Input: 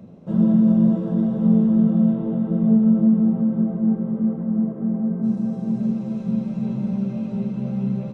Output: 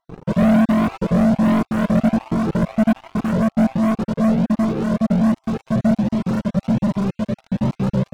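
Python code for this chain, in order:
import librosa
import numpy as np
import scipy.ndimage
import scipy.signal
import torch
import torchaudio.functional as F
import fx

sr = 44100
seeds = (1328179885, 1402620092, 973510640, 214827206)

y = fx.spec_dropout(x, sr, seeds[0], share_pct=37)
y = fx.leveller(y, sr, passes=5)
y = fx.comb_cascade(y, sr, direction='rising', hz=1.3)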